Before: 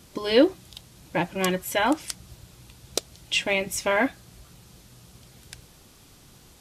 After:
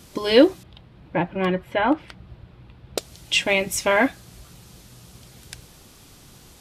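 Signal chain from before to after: 0.63–2.98 air absorption 440 m; gain +4 dB

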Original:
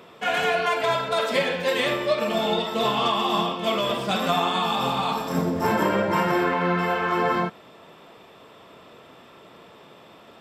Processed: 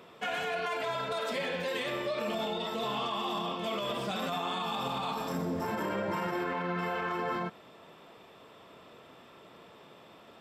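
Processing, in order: limiter -19.5 dBFS, peak gain reduction 11 dB; gain -5.5 dB

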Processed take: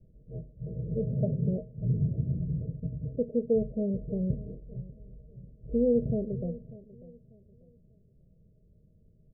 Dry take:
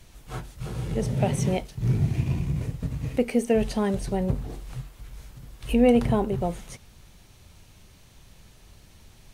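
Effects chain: low-pass opened by the level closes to 470 Hz, open at -20.5 dBFS; vocal rider within 3 dB 2 s; rippled Chebyshev low-pass 650 Hz, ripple 9 dB; on a send: feedback echo 0.593 s, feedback 30%, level -19 dB; on the sum: gain -2.5 dB

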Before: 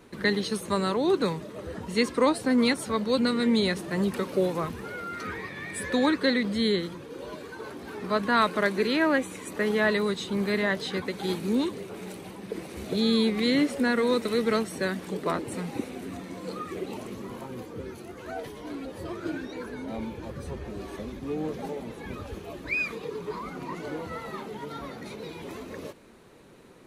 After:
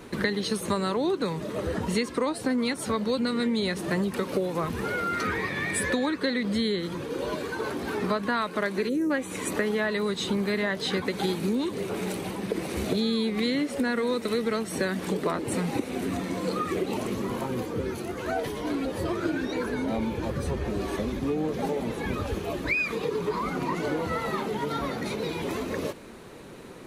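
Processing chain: spectral gain 8.89–9.11, 560–5200 Hz -23 dB; compressor 10:1, threshold -32 dBFS, peak gain reduction 15 dB; gain +8.5 dB

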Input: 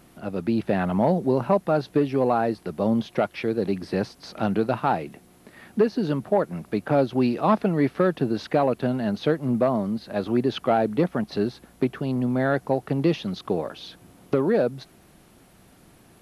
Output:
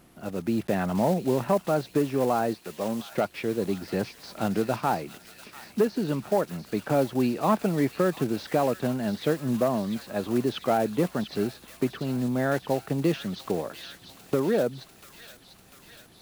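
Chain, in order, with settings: block floating point 5-bit; 2.54–3.12 low shelf 260 Hz -10.5 dB; on a send: thin delay 0.695 s, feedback 68%, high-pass 2300 Hz, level -6.5 dB; on the sum: gain -3 dB

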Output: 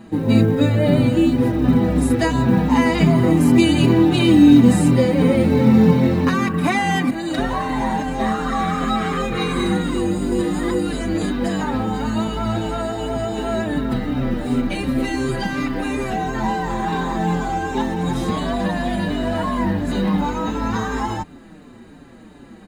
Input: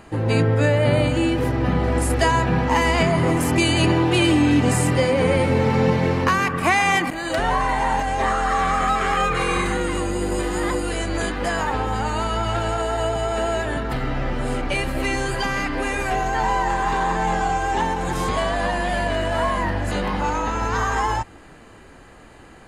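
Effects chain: small resonant body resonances 220/3800 Hz, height 15 dB, ringing for 25 ms; companded quantiser 8-bit; endless flanger 5.6 ms -2.8 Hz; gain -1 dB

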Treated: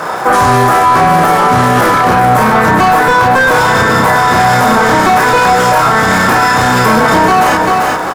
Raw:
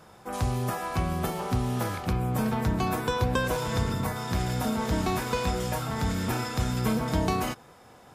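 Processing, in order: HPF 120 Hz; bell 210 Hz -5.5 dB 0.24 oct; doubler 31 ms -3 dB; overdrive pedal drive 26 dB, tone 5800 Hz, clips at -11.5 dBFS; resonant high shelf 2100 Hz -6.5 dB, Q 1.5; on a send: feedback echo 0.392 s, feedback 31%, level -9.5 dB; on the sum: crackle 370/s -39 dBFS; maximiser +17.5 dB; gain -1 dB

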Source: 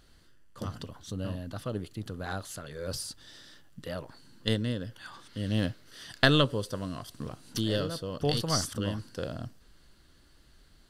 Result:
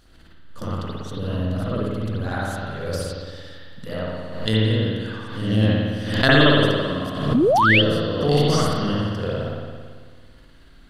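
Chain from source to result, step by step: spring tank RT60 1.7 s, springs 55 ms, chirp 35 ms, DRR -9.5 dB; painted sound rise, 7.34–7.82, 210–3400 Hz -16 dBFS; backwards sustainer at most 59 dB/s

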